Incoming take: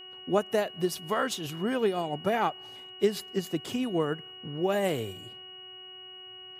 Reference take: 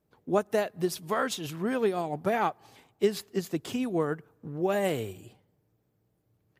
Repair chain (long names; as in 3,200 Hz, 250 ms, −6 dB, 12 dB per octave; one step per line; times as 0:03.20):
hum removal 372.2 Hz, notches 7
notch filter 2,900 Hz, Q 30